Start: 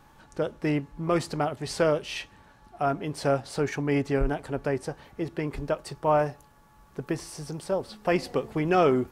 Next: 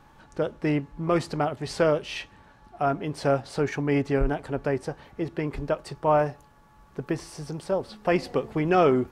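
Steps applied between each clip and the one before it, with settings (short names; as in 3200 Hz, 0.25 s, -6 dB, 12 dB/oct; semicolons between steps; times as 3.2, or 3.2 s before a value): high shelf 6900 Hz -8.5 dB; gain +1.5 dB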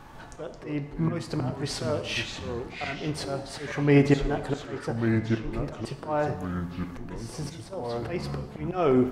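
auto swell 0.505 s; echoes that change speed 0.135 s, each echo -4 st, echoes 3, each echo -6 dB; non-linear reverb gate 0.33 s falling, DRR 8.5 dB; gain +7 dB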